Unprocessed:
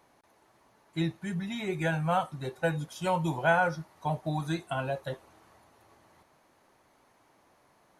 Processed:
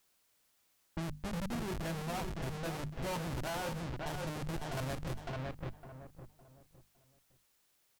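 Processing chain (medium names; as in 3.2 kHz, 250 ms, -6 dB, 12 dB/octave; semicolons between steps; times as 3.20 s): Schmitt trigger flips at -31 dBFS; hum notches 50/100/150/200/250 Hz; on a send: feedback delay 559 ms, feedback 31%, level -8 dB; on the sum: level-controlled noise filter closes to 910 Hz, open at -32 dBFS; added noise white -76 dBFS; peak limiter -34 dBFS, peak gain reduction 9 dB; trim +2.5 dB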